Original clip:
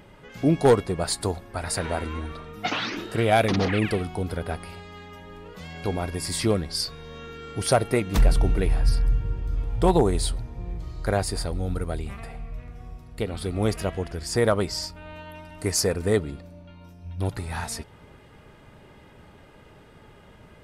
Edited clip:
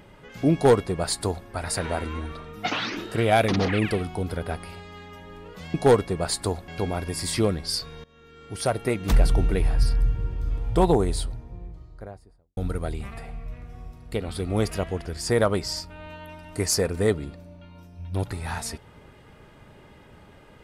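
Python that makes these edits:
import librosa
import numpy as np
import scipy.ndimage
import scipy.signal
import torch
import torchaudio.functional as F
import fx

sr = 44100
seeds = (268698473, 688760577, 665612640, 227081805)

y = fx.studio_fade_out(x, sr, start_s=9.78, length_s=1.85)
y = fx.edit(y, sr, fx.duplicate(start_s=0.53, length_s=0.94, to_s=5.74),
    fx.fade_in_from(start_s=7.1, length_s=1.14, floor_db=-21.0), tone=tone)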